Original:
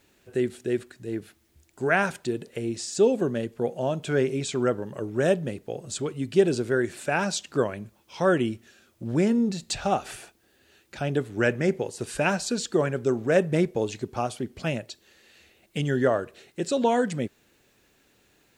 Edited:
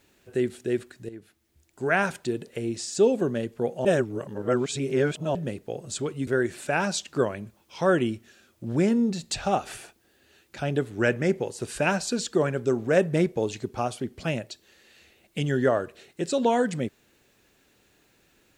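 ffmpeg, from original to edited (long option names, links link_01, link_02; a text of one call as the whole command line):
ffmpeg -i in.wav -filter_complex "[0:a]asplit=5[link_01][link_02][link_03][link_04][link_05];[link_01]atrim=end=1.09,asetpts=PTS-STARTPTS,afade=type=out:start_time=1.086:duration=0.004:curve=hsin:silence=0.223872[link_06];[link_02]atrim=start=1.09:end=3.852,asetpts=PTS-STARTPTS,afade=type=in:duration=0.97:silence=0.223872[link_07];[link_03]atrim=start=3.848:end=5.352,asetpts=PTS-STARTPTS,areverse[link_08];[link_04]atrim=start=5.348:end=6.272[link_09];[link_05]atrim=start=6.658[link_10];[link_06][link_07]concat=n=2:v=0:a=1[link_11];[link_11][link_08]acrossfade=duration=0.004:curve1=hsin:curve2=hsin[link_12];[link_12][link_09]acrossfade=duration=0.004:curve1=hsin:curve2=hsin[link_13];[link_13][link_10]acrossfade=duration=0.004:curve1=hsin:curve2=hsin" out.wav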